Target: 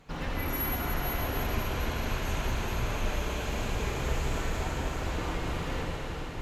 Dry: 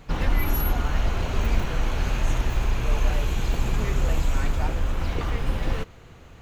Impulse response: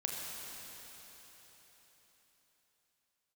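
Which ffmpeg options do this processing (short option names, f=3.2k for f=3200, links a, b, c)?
-filter_complex "[0:a]lowshelf=f=97:g=-8.5[a];[1:a]atrim=start_sample=2205,asetrate=27342,aresample=44100[b];[a][b]afir=irnorm=-1:irlink=0,volume=-8dB"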